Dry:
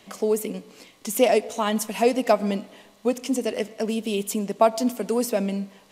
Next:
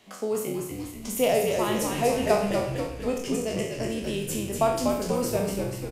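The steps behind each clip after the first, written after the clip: spectral sustain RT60 0.62 s; frequency-shifting echo 243 ms, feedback 58%, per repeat -68 Hz, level -4.5 dB; trim -6.5 dB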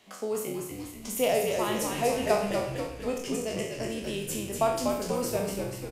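bass shelf 370 Hz -4 dB; trim -1.5 dB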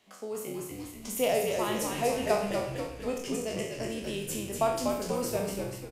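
level rider gain up to 5 dB; trim -6.5 dB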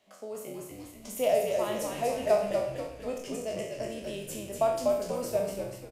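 peaking EQ 610 Hz +11 dB 0.33 oct; trim -4.5 dB

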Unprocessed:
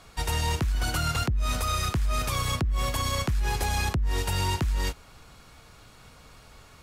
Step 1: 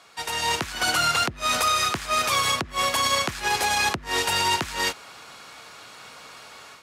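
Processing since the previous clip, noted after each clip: frequency weighting A; level rider gain up to 9 dB; peak limiter -14 dBFS, peak gain reduction 4.5 dB; trim +1 dB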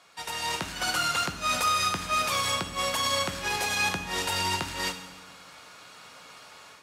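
reverberation RT60 1.2 s, pre-delay 3 ms, DRR 6 dB; trim -5.5 dB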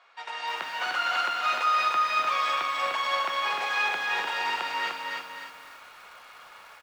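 band-pass 700–2500 Hz; feedback delay 250 ms, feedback 29%, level -6.5 dB; bit-crushed delay 300 ms, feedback 35%, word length 9-bit, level -3.5 dB; trim +1.5 dB

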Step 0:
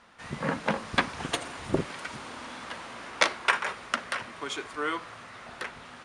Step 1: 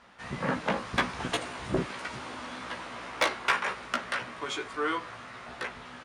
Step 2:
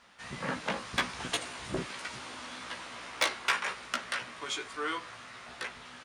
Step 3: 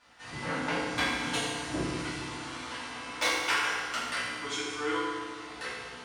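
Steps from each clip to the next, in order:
treble shelf 7.6 kHz -7 dB; saturation -17 dBFS, distortion -12 dB; doubling 16 ms -4 dB
treble shelf 2.3 kHz +10.5 dB; trim -6.5 dB
FDN reverb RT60 1.6 s, low-frequency decay 1.35×, high-frequency decay 0.8×, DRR -9.5 dB; trim -7 dB

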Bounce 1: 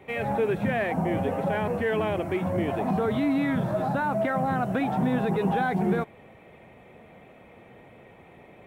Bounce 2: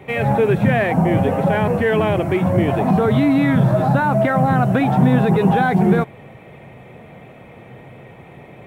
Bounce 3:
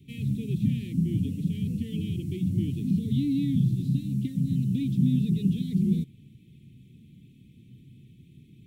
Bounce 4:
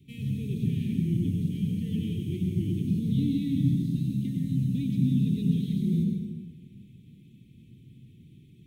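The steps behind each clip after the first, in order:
peaking EQ 130 Hz +9 dB 0.59 oct; trim +8.5 dB
inverse Chebyshev band-stop 620–1500 Hz, stop band 60 dB; trim -8 dB
plate-style reverb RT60 1.6 s, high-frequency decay 0.6×, pre-delay 85 ms, DRR 0.5 dB; trim -3 dB

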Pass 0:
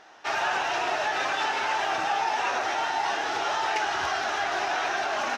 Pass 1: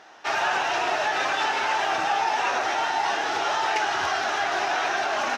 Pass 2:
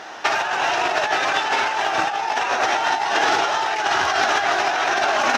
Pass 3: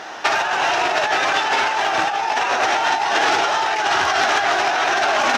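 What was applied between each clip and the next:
high-pass 75 Hz; trim +2.5 dB
compressor with a negative ratio -28 dBFS, ratio -0.5; trim +9 dB
transformer saturation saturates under 2 kHz; trim +3 dB

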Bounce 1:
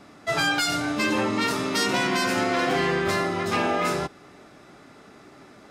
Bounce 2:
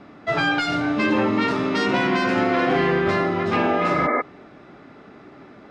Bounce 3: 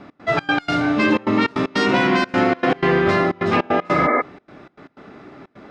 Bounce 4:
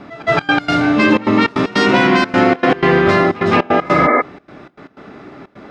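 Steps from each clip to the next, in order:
low-pass 3 kHz 12 dB/octave; peaking EQ 260 Hz +3 dB 1.9 oct; spectral replace 3.88–4.19 s, 220–2300 Hz before; trim +2.5 dB
trance gate "x.xx.x.xxxx" 154 bpm -24 dB; trim +3.5 dB
pre-echo 169 ms -19 dB; trim +5 dB

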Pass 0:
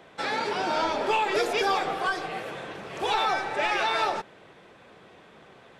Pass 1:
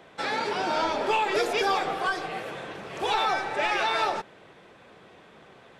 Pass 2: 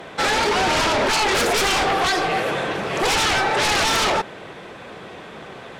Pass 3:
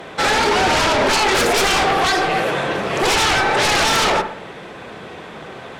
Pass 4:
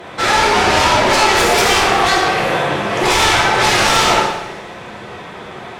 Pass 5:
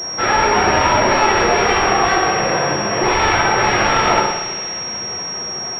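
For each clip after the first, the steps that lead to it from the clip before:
no audible change
sine folder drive 14 dB, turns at -12.5 dBFS; trim -3.5 dB
feedback echo behind a low-pass 63 ms, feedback 46%, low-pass 2.1 kHz, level -8 dB; trim +2.5 dB
two-slope reverb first 0.9 s, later 3.3 s, from -25 dB, DRR -3.5 dB; trim -1.5 dB
feedback echo behind a high-pass 199 ms, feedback 72%, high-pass 2 kHz, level -11 dB; class-D stage that switches slowly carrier 5.6 kHz; trim -1 dB

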